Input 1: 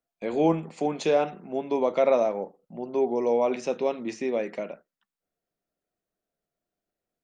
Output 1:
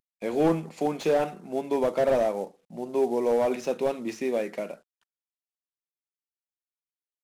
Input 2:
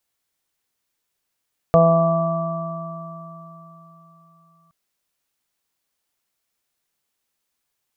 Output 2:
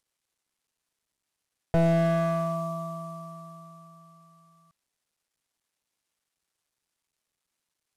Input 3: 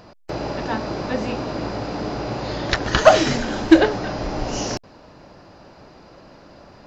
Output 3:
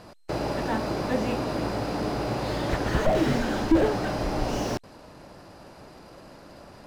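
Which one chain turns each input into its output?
CVSD coder 64 kbps; slew-rate limiter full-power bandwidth 69 Hz; normalise loudness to -27 LUFS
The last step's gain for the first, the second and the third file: +0.5 dB, -3.0 dB, -1.5 dB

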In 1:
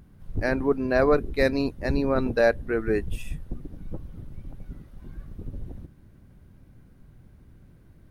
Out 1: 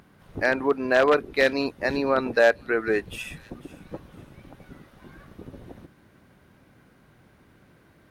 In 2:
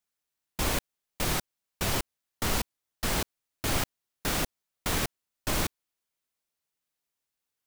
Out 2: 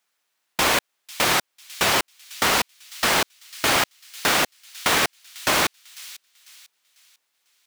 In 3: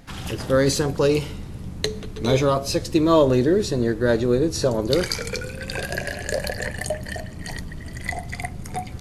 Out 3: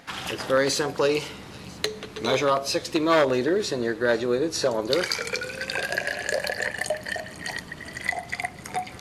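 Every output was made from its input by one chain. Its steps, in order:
one-sided wavefolder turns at -12 dBFS; high-pass 950 Hz 6 dB/octave; treble shelf 4.9 kHz -10 dB; feedback echo behind a high-pass 497 ms, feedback 36%, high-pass 3.3 kHz, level -17 dB; in parallel at -1 dB: compression, threshold -38 dBFS; on the sum: peak normalisation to -6 dBFS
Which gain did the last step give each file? +6.5 dB, +12.5 dB, +2.5 dB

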